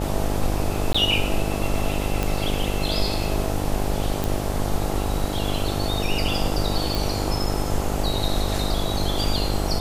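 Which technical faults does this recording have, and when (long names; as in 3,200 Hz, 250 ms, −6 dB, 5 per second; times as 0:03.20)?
mains buzz 50 Hz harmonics 17 −27 dBFS
0:00.93–0:00.94: drop-out 15 ms
0:02.23: click
0:04.24: click
0:06.95: click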